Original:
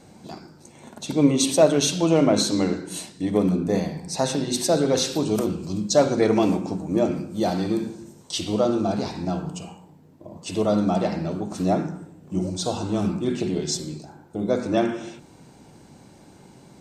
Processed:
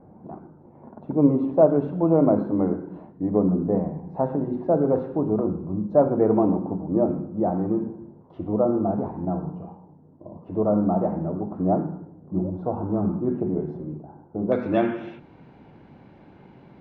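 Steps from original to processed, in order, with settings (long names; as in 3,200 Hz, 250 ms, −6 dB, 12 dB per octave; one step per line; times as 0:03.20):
low-pass filter 1,100 Hz 24 dB per octave, from 0:14.52 2,800 Hz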